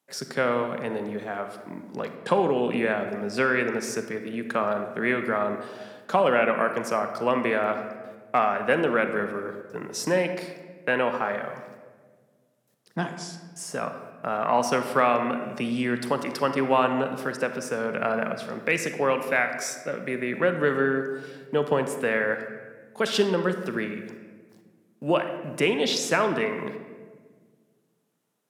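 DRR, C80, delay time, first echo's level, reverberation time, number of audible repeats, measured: 7.0 dB, 9.5 dB, no echo audible, no echo audible, 1.5 s, no echo audible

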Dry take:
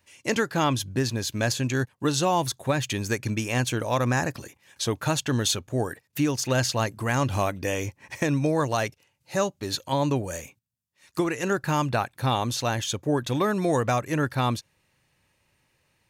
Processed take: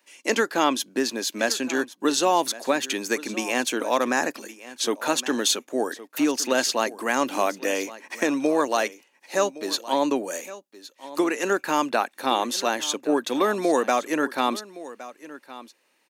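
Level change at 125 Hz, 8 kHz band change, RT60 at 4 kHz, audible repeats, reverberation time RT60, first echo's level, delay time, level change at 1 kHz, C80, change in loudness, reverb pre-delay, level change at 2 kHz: −21.5 dB, +3.0 dB, no reverb audible, 1, no reverb audible, −17.0 dB, 1,115 ms, +3.0 dB, no reverb audible, +2.0 dB, no reverb audible, +3.0 dB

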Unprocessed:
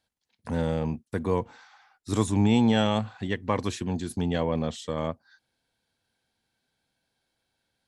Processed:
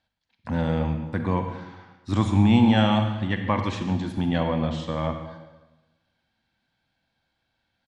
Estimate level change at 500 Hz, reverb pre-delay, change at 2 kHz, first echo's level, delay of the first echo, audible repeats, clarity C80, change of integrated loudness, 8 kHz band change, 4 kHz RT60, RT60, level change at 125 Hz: −0.5 dB, 37 ms, +4.0 dB, −16.0 dB, 141 ms, 1, 8.5 dB, +3.5 dB, can't be measured, 1.1 s, 1.2 s, +5.0 dB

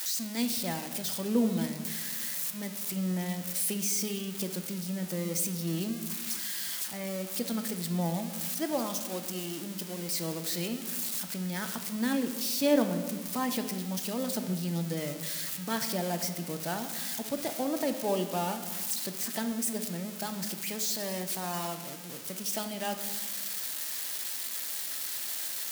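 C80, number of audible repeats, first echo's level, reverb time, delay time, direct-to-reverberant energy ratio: 11.0 dB, no echo audible, no echo audible, 1.5 s, no echo audible, 6.5 dB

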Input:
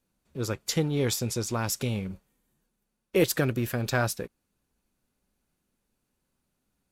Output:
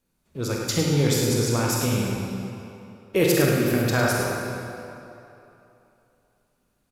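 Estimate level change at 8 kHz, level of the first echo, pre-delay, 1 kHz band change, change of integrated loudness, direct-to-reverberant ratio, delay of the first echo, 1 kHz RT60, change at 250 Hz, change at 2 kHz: +5.0 dB, −8.5 dB, 27 ms, +6.5 dB, +5.0 dB, −3.0 dB, 48 ms, 3.0 s, +7.0 dB, +6.5 dB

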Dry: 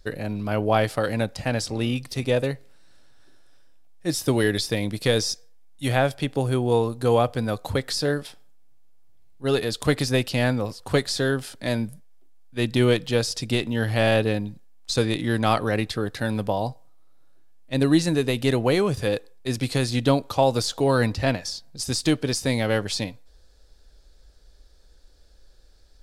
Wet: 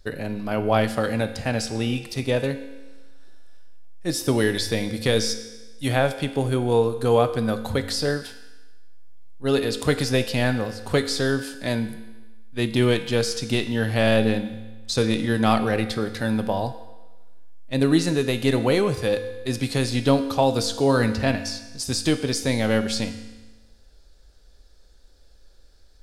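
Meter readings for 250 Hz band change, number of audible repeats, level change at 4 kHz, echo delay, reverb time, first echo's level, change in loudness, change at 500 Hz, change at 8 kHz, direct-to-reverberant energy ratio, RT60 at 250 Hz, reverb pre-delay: +1.5 dB, no echo audible, +0.5 dB, no echo audible, 1.2 s, no echo audible, +0.5 dB, +1.0 dB, +0.5 dB, 8.5 dB, 1.2 s, 4 ms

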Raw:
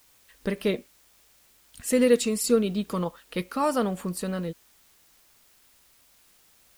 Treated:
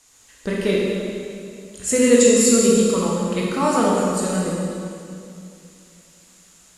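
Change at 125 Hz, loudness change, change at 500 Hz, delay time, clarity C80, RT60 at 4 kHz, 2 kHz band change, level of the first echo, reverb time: +8.0 dB, +8.5 dB, +8.0 dB, no echo audible, 0.0 dB, 2.1 s, +8.0 dB, no echo audible, 2.5 s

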